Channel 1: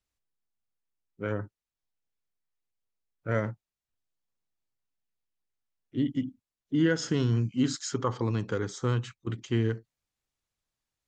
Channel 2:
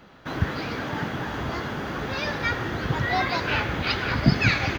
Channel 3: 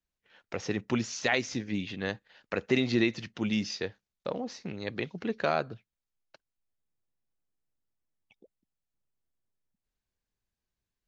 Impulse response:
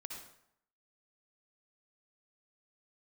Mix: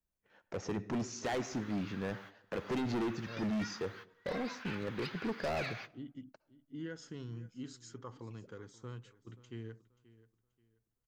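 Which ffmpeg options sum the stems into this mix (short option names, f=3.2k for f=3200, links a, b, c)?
-filter_complex "[0:a]volume=-18.5dB,asplit=2[a][b];[b]volume=-18.5dB[c];[1:a]highpass=f=930:w=0.5412,highpass=f=930:w=1.3066,adelay=1150,volume=-18.5dB,asplit=2[d][e];[e]volume=-20.5dB[f];[2:a]equalizer=f=3.4k:w=0.68:g=-13,volume=-1dB,asplit=3[g][h][i];[h]volume=-10.5dB[j];[i]apad=whole_len=261539[k];[d][k]sidechaingate=range=-33dB:threshold=-54dB:ratio=16:detection=peak[l];[3:a]atrim=start_sample=2205[m];[f][j]amix=inputs=2:normalize=0[n];[n][m]afir=irnorm=-1:irlink=0[o];[c]aecho=0:1:532|1064|1596|2128:1|0.28|0.0784|0.022[p];[a][l][g][o][p]amix=inputs=5:normalize=0,asoftclip=type=hard:threshold=-31.5dB"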